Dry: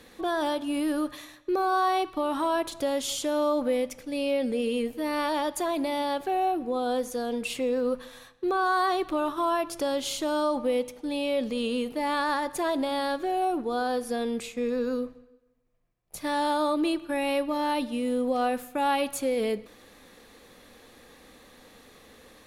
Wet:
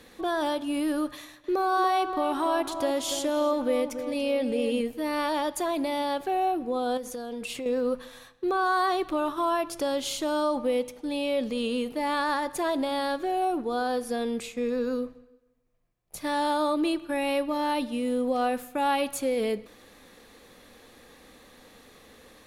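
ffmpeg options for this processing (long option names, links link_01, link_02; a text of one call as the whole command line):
ffmpeg -i in.wav -filter_complex "[0:a]asettb=1/sr,asplit=3[link_01][link_02][link_03];[link_01]atrim=end=1.154[link_04];[link_02]atrim=start=1.15:end=4.81,asetpts=PTS-STARTPTS,afade=type=in:duration=0.004:curve=qsin,afade=type=out:start_time=3.656:duration=0.004:curve=qsin,asplit=2[link_05][link_06];[link_06]adelay=287,lowpass=frequency=1700:poles=1,volume=-8dB,asplit=2[link_07][link_08];[link_08]adelay=287,lowpass=frequency=1700:poles=1,volume=0.49,asplit=2[link_09][link_10];[link_10]adelay=287,lowpass=frequency=1700:poles=1,volume=0.49,asplit=2[link_11][link_12];[link_12]adelay=287,lowpass=frequency=1700:poles=1,volume=0.49,asplit=2[link_13][link_14];[link_14]adelay=287,lowpass=frequency=1700:poles=1,volume=0.49,asplit=2[link_15][link_16];[link_16]adelay=287,lowpass=frequency=1700:poles=1,volume=0.49[link_17];[link_05][link_07][link_09][link_11][link_13][link_15][link_17]amix=inputs=7:normalize=0,atrim=end_sample=161406[link_18];[link_03]atrim=start=4.806[link_19];[link_04][link_18]acrossfade=duration=0.004:curve1=hsin:curve2=qsin[link_20];[link_20][link_19]acrossfade=duration=0.004:curve1=qsin:curve2=hsin,asettb=1/sr,asplit=3[link_21][link_22][link_23];[link_21]atrim=end=6.974[link_24];[link_22]atrim=start=6.97:end=7.66,asetpts=PTS-STARTPTS,afade=type=in:duration=0.004:curve=qsin,afade=type=out:start_time=0.686:duration=0.004:curve=qsin,acompressor=threshold=-31dB:ratio=6:attack=3.2:release=140:knee=1:detection=peak[link_25];[link_23]atrim=start=7.656[link_26];[link_24][link_25]acrossfade=duration=0.004:curve1=hsin:curve2=qsin[link_27];[link_27][link_26]acrossfade=duration=0.004:curve1=qsin:curve2=hsin" out.wav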